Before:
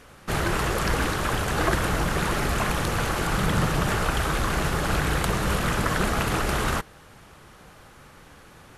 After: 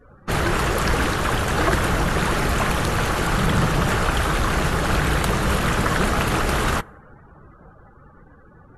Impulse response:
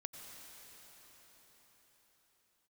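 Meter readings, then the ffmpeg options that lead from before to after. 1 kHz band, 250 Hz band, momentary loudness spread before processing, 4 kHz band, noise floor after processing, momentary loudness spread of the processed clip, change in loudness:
+4.0 dB, +4.0 dB, 2 LU, +3.5 dB, -49 dBFS, 2 LU, +4.0 dB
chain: -filter_complex "[0:a]asplit=2[s0][s1];[1:a]atrim=start_sample=2205[s2];[s1][s2]afir=irnorm=-1:irlink=0,volume=0.141[s3];[s0][s3]amix=inputs=2:normalize=0,acontrast=84,afftdn=nr=32:nf=-38,volume=0.668"

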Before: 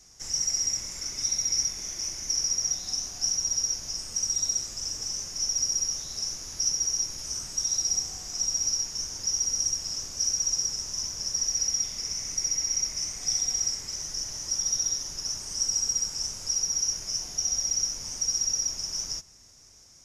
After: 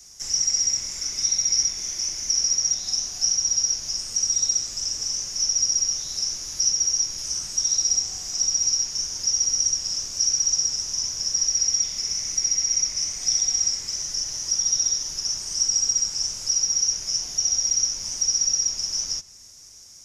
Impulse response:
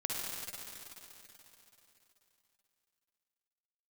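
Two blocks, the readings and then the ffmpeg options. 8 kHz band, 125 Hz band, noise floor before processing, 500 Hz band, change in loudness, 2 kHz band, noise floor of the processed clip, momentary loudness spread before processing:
+5.0 dB, 0.0 dB, -53 dBFS, no reading, +5.5 dB, +3.0 dB, -46 dBFS, 7 LU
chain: -filter_complex "[0:a]highshelf=f=3000:g=10,acrossover=split=310|890|6700[s0][s1][s2][s3];[s3]acompressor=threshold=0.00794:ratio=10[s4];[s0][s1][s2][s4]amix=inputs=4:normalize=0"

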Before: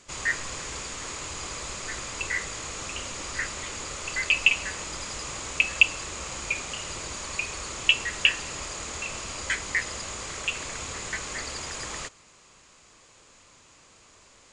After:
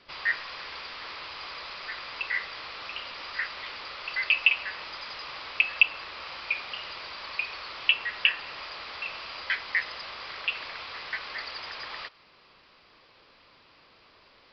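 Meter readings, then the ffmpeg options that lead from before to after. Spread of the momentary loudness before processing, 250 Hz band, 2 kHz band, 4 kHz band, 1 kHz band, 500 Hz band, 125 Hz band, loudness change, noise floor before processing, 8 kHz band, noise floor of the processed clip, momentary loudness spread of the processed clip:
13 LU, under -10 dB, -1.0 dB, -2.0 dB, -1.0 dB, -7.0 dB, under -15 dB, -2.0 dB, -56 dBFS, under -30 dB, -59 dBFS, 15 LU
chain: -filter_complex "[0:a]aresample=11025,aresample=44100,acrossover=split=630|3000[s0][s1][s2];[s0]acompressor=threshold=0.00282:ratio=10[s3];[s2]alimiter=limit=0.133:level=0:latency=1:release=417[s4];[s3][s1][s4]amix=inputs=3:normalize=0,lowshelf=f=200:g=-8"

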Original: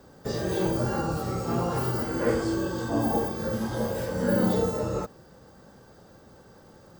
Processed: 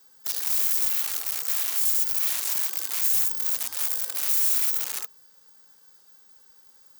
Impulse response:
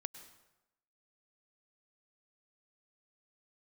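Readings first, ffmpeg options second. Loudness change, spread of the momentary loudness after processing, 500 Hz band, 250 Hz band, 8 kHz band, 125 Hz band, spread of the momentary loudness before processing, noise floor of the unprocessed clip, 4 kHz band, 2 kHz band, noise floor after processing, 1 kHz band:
+5.5 dB, 6 LU, under -25 dB, under -30 dB, +16.0 dB, under -35 dB, 6 LU, -53 dBFS, +8.0 dB, -2.0 dB, -56 dBFS, -12.5 dB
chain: -af "asuperstop=centerf=640:order=8:qfactor=3.2,aeval=exprs='(mod(16.8*val(0)+1,2)-1)/16.8':c=same,aderivative,volume=1.68"

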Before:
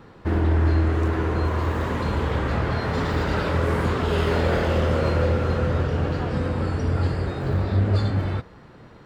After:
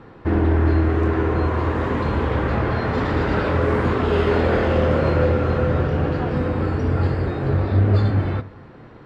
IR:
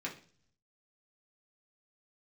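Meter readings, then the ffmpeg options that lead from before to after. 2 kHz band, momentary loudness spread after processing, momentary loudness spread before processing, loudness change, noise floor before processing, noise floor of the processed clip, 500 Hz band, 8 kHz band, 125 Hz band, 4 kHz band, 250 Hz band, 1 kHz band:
+2.5 dB, 4 LU, 4 LU, +3.0 dB, -47 dBFS, -43 dBFS, +4.5 dB, no reading, +2.5 dB, -1.5 dB, +4.5 dB, +3.0 dB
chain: -filter_complex "[0:a]aemphasis=mode=reproduction:type=75fm,asplit=2[s0][s1];[1:a]atrim=start_sample=2205[s2];[s1][s2]afir=irnorm=-1:irlink=0,volume=0.316[s3];[s0][s3]amix=inputs=2:normalize=0,volume=1.26"

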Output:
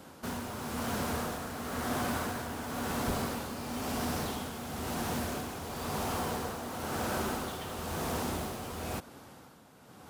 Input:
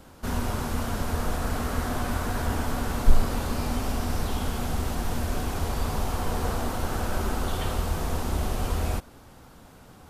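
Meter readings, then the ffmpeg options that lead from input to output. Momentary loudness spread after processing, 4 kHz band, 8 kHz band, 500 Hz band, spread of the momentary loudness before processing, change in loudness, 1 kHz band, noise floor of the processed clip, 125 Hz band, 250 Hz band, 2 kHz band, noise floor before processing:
6 LU, -3.0 dB, -2.5 dB, -4.0 dB, 2 LU, -6.0 dB, -3.5 dB, -54 dBFS, -10.5 dB, -4.0 dB, -3.5 dB, -50 dBFS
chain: -filter_complex "[0:a]highpass=130,asplit=2[s0][s1];[s1]aeval=exprs='(mod(28.2*val(0)+1,2)-1)/28.2':c=same,volume=0.299[s2];[s0][s2]amix=inputs=2:normalize=0,tremolo=f=0.98:d=0.56,volume=0.841"

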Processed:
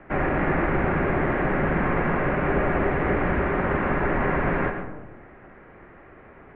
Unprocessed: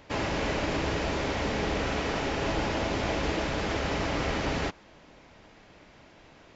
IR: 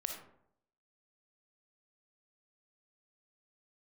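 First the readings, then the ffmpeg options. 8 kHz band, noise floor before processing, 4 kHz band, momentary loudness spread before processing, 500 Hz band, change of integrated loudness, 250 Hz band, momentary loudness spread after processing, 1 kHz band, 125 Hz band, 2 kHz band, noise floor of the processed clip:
no reading, -55 dBFS, under -10 dB, 1 LU, +6.0 dB, +5.5 dB, +6.5 dB, 2 LU, +6.5 dB, +6.5 dB, +6.5 dB, -48 dBFS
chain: -filter_complex "[0:a]highpass=f=270:t=q:w=0.5412,highpass=f=270:t=q:w=1.307,lowpass=f=2300:t=q:w=0.5176,lowpass=f=2300:t=q:w=0.7071,lowpass=f=2300:t=q:w=1.932,afreqshift=-260,asplit=2[s0][s1];[s1]aemphasis=mode=production:type=50kf[s2];[1:a]atrim=start_sample=2205,asetrate=25578,aresample=44100,lowpass=4000[s3];[s2][s3]afir=irnorm=-1:irlink=0,volume=1.19[s4];[s0][s4]amix=inputs=2:normalize=0"

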